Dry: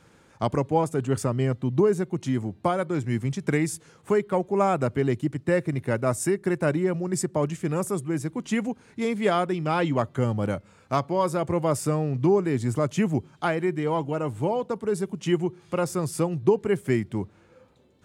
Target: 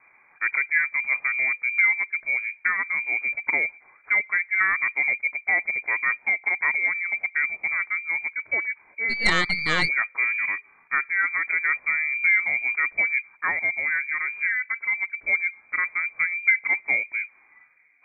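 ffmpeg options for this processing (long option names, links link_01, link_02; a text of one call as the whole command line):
ffmpeg -i in.wav -filter_complex "[0:a]lowpass=frequency=2100:width_type=q:width=0.5098,lowpass=frequency=2100:width_type=q:width=0.6013,lowpass=frequency=2100:width_type=q:width=0.9,lowpass=frequency=2100:width_type=q:width=2.563,afreqshift=-2500,asplit=3[link_01][link_02][link_03];[link_01]afade=type=out:start_time=9.09:duration=0.02[link_04];[link_02]aeval=exprs='0.299*(cos(1*acos(clip(val(0)/0.299,-1,1)))-cos(1*PI/2))+0.0944*(cos(4*acos(clip(val(0)/0.299,-1,1)))-cos(4*PI/2))+0.00335*(cos(6*acos(clip(val(0)/0.299,-1,1)))-cos(6*PI/2))+0.00376*(cos(8*acos(clip(val(0)/0.299,-1,1)))-cos(8*PI/2))':channel_layout=same,afade=type=in:start_time=9.09:duration=0.02,afade=type=out:start_time=9.87:duration=0.02[link_05];[link_03]afade=type=in:start_time=9.87:duration=0.02[link_06];[link_04][link_05][link_06]amix=inputs=3:normalize=0" out.wav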